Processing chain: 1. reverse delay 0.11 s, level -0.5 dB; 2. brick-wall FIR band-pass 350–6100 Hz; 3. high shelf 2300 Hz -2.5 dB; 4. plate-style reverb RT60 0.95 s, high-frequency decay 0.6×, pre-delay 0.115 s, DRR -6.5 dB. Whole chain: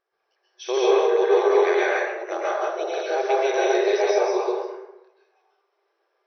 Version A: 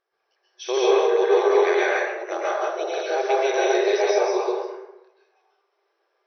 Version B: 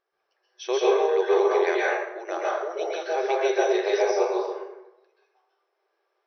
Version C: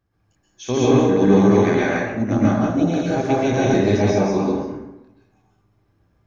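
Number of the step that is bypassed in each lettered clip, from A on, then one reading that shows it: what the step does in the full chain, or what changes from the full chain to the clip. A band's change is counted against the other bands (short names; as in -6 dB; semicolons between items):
3, 4 kHz band +1.5 dB; 1, loudness change -2.5 LU; 2, 250 Hz band +14.0 dB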